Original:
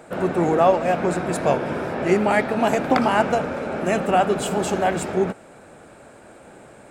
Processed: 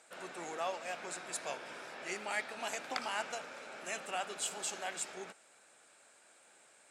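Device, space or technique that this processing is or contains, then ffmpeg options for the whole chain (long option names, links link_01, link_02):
piezo pickup straight into a mixer: -af "lowpass=7200,aderivative,volume=-1.5dB"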